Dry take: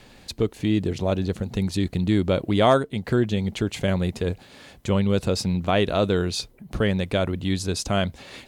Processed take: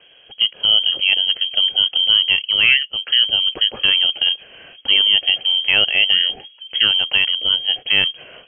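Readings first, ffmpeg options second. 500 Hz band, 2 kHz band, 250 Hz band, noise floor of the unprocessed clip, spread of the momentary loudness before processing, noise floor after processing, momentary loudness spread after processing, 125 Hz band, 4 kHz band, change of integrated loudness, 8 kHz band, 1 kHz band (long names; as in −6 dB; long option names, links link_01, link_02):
−14.0 dB, +14.5 dB, −20.0 dB, −50 dBFS, 7 LU, −49 dBFS, 6 LU, below −15 dB, +22.5 dB, +9.5 dB, below −40 dB, −8.5 dB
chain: -af "lowpass=frequency=2800:width_type=q:width=0.5098,lowpass=frequency=2800:width_type=q:width=0.6013,lowpass=frequency=2800:width_type=q:width=0.9,lowpass=frequency=2800:width_type=q:width=2.563,afreqshift=-3300,dynaudnorm=framelen=110:gausssize=7:maxgain=7.5dB,equalizer=frequency=125:width_type=o:width=1:gain=3,equalizer=frequency=500:width_type=o:width=1:gain=8,equalizer=frequency=1000:width_type=o:width=1:gain=-12,volume=1.5dB"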